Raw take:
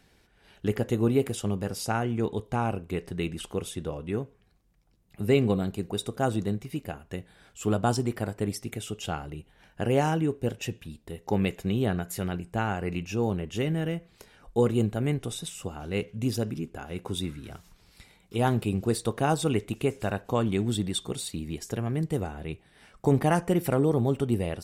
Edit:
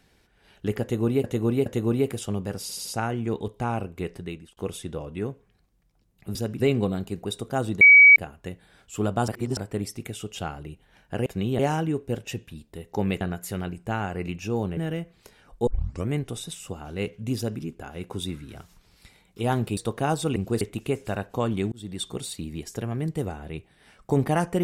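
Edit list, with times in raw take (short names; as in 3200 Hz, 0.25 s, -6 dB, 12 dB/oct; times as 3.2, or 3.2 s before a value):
0.82–1.24 loop, 3 plays
1.77 stutter 0.08 s, 4 plays
3.02–3.49 fade out linear
6.48–6.83 bleep 2270 Hz -8 dBFS
7.95–8.24 reverse
11.55–11.88 move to 9.93
13.44–13.72 cut
14.62 tape start 0.43 s
16.32–16.57 copy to 5.27
18.72–18.97 move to 19.56
20.67–21.02 fade in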